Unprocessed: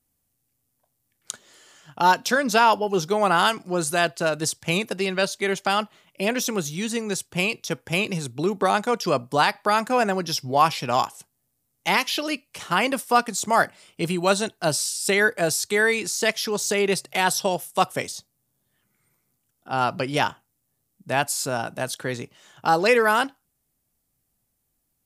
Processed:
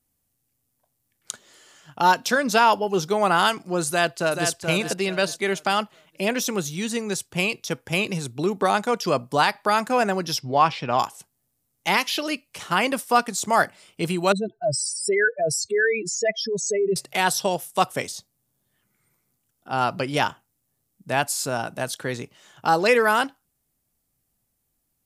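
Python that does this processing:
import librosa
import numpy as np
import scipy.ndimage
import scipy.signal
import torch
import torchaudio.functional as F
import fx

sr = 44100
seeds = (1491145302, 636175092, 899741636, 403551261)

y = fx.echo_throw(x, sr, start_s=3.88, length_s=0.62, ms=430, feedback_pct=30, wet_db=-6.0)
y = fx.lowpass(y, sr, hz=fx.line((10.38, 5600.0), (10.98, 2900.0)), slope=12, at=(10.38, 10.98), fade=0.02)
y = fx.spec_expand(y, sr, power=3.1, at=(14.32, 16.96))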